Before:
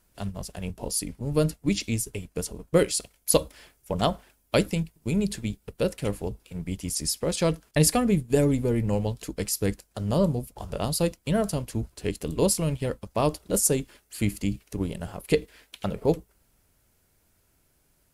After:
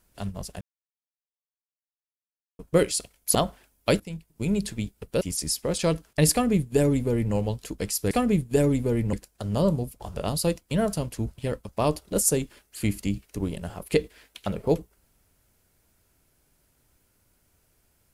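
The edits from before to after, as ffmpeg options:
-filter_complex "[0:a]asplit=9[s0][s1][s2][s3][s4][s5][s6][s7][s8];[s0]atrim=end=0.61,asetpts=PTS-STARTPTS,afade=t=out:st=0.606:d=0.004:c=hsin[s9];[s1]atrim=start=0.61:end=2.59,asetpts=PTS-STARTPTS,volume=0[s10];[s2]atrim=start=2.59:end=3.352,asetpts=PTS-STARTPTS,afade=t=in:d=0.004:c=hsin[s11];[s3]atrim=start=4.008:end=4.66,asetpts=PTS-STARTPTS,afade=t=out:st=0.648:d=0.004:c=hsin:silence=0.158489[s12];[s4]atrim=start=4.66:end=5.872,asetpts=PTS-STARTPTS,afade=t=in:d=0.51:silence=0.158489[s13];[s5]atrim=start=6.788:end=9.692[s14];[s6]atrim=start=7.898:end=8.922[s15];[s7]atrim=start=9.688:end=11.942[s16];[s8]atrim=start=12.758[s17];[s9][s10][s11]concat=n=3:v=0:a=1[s18];[s12][s13]concat=n=2:v=0:a=1[s19];[s18][s19]acrossfade=d=0.004:c1=hsin:c2=hsin[s20];[s20][s14]acrossfade=d=0.004:c1=hsin:c2=hsin[s21];[s21][s15]acrossfade=d=0.004:c1=hsin:c2=hsin[s22];[s22][s16]acrossfade=d=0.004:c1=hsin:c2=hsin[s23];[s23][s17]acrossfade=d=0.004:c1=hsin:c2=hsin"

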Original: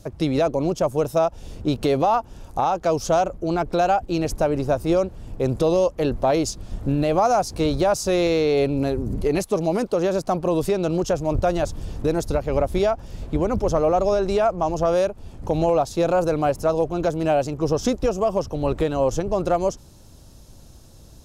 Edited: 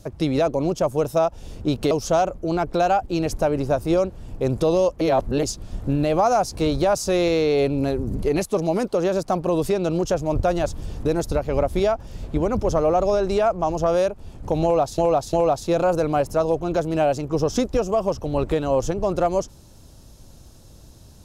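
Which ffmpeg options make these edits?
-filter_complex "[0:a]asplit=6[s0][s1][s2][s3][s4][s5];[s0]atrim=end=1.912[s6];[s1]atrim=start=2.898:end=6.002[s7];[s2]atrim=start=5.998:end=6.422,asetpts=PTS-STARTPTS,areverse[s8];[s3]atrim=start=6.418:end=15.972[s9];[s4]atrim=start=15.618:end=15.972[s10];[s5]atrim=start=15.618[s11];[s6][s7]acrossfade=d=0.004:c1=hsin:c2=hsin[s12];[s12][s8]acrossfade=d=0.004:c1=hsin:c2=hsin[s13];[s13][s9]acrossfade=d=0.004:c1=hsin:c2=hsin[s14];[s14][s10]acrossfade=d=0.004:c1=hsin:c2=hsin[s15];[s15][s11]acrossfade=d=0.004:c1=hsin:c2=hsin"

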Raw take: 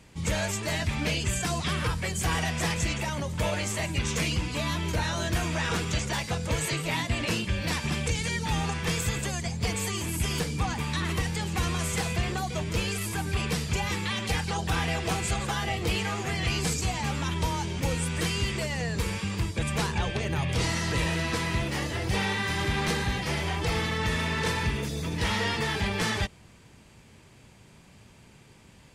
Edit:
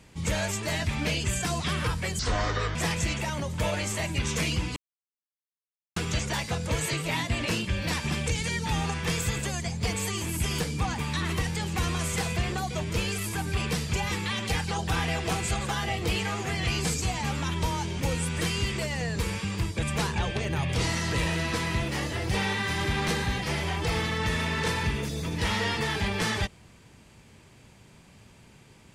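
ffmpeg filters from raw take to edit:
-filter_complex "[0:a]asplit=5[s0][s1][s2][s3][s4];[s0]atrim=end=2.194[s5];[s1]atrim=start=2.19:end=2.55,asetpts=PTS-STARTPTS,asetrate=28224,aresample=44100,atrim=end_sample=24806,asetpts=PTS-STARTPTS[s6];[s2]atrim=start=2.546:end=4.56,asetpts=PTS-STARTPTS,afade=t=out:st=2.01:d=0.004:c=hsin[s7];[s3]atrim=start=4.56:end=5.76,asetpts=PTS-STARTPTS,volume=0[s8];[s4]atrim=start=5.76,asetpts=PTS-STARTPTS,afade=t=in:d=0.004:c=hsin[s9];[s5][s6]acrossfade=d=0.004:c1=hsin:c2=hsin[s10];[s7][s8][s9]concat=n=3:v=0:a=1[s11];[s10][s11]acrossfade=d=0.004:c1=hsin:c2=hsin"

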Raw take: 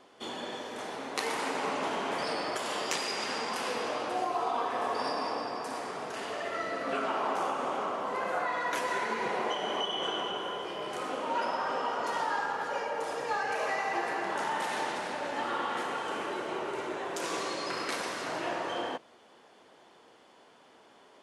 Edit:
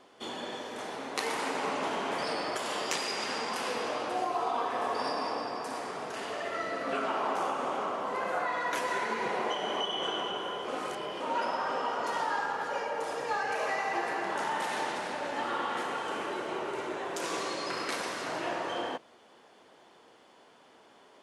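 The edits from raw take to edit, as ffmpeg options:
-filter_complex "[0:a]asplit=3[s0][s1][s2];[s0]atrim=end=10.682[s3];[s1]atrim=start=10.678:end=11.202,asetpts=PTS-STARTPTS,areverse[s4];[s2]atrim=start=11.198[s5];[s3][s4]acrossfade=d=0.004:c1=hsin:c2=hsin[s6];[s6][s5]acrossfade=d=0.004:c1=hsin:c2=hsin"

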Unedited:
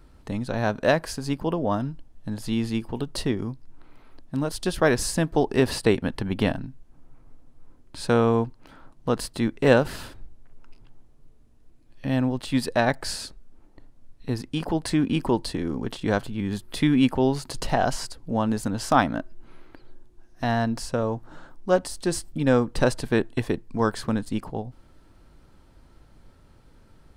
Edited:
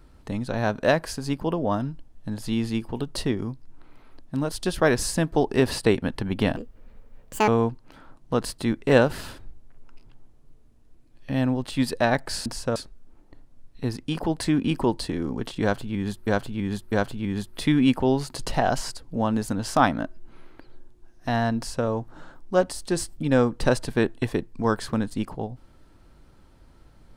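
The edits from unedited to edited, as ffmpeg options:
-filter_complex "[0:a]asplit=7[s0][s1][s2][s3][s4][s5][s6];[s0]atrim=end=6.564[s7];[s1]atrim=start=6.56:end=8.23,asetpts=PTS-STARTPTS,asetrate=80262,aresample=44100,atrim=end_sample=40465,asetpts=PTS-STARTPTS[s8];[s2]atrim=start=8.226:end=13.212[s9];[s3]atrim=start=20.718:end=21.022[s10];[s4]atrim=start=13.208:end=16.722[s11];[s5]atrim=start=16.068:end=16.722[s12];[s6]atrim=start=16.068[s13];[s7][s8]acrossfade=d=0.004:c1=hsin:c2=hsin[s14];[s14][s9]acrossfade=d=0.004:c1=hsin:c2=hsin[s15];[s15][s10]acrossfade=d=0.004:c1=hsin:c2=hsin[s16];[s16][s11]acrossfade=d=0.004:c1=hsin:c2=hsin[s17];[s17][s12]acrossfade=d=0.004:c1=hsin:c2=hsin[s18];[s18][s13]acrossfade=d=0.004:c1=hsin:c2=hsin"

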